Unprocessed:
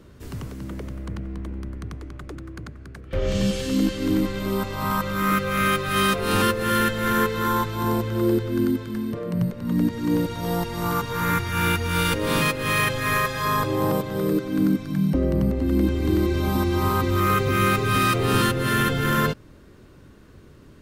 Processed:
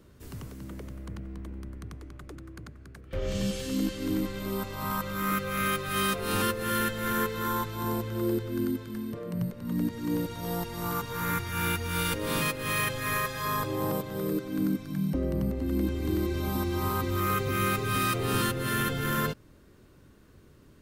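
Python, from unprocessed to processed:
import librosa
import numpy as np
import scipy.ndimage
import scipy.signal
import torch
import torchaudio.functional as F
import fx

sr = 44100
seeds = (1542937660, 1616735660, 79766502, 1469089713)

y = fx.high_shelf(x, sr, hz=8500.0, db=8.0)
y = F.gain(torch.from_numpy(y), -7.5).numpy()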